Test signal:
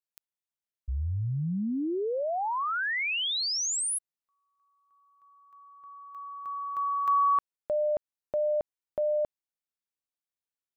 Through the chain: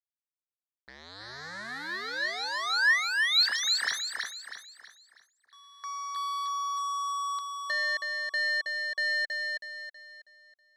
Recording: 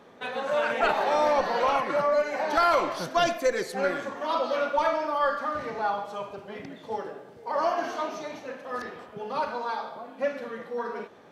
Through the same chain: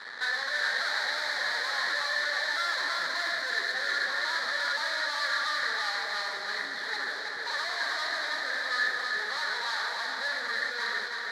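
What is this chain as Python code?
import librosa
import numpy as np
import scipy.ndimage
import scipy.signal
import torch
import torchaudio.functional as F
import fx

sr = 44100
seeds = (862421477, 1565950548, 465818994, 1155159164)

y = scipy.ndimage.median_filter(x, 9, mode='constant')
y = fx.peak_eq(y, sr, hz=2500.0, db=-4.0, octaves=0.39)
y = fx.fuzz(y, sr, gain_db=52.0, gate_db=-52.0)
y = fx.double_bandpass(y, sr, hz=2700.0, octaves=1.2)
y = fx.echo_feedback(y, sr, ms=322, feedback_pct=39, wet_db=-4)
y = y * librosa.db_to_amplitude(-5.5)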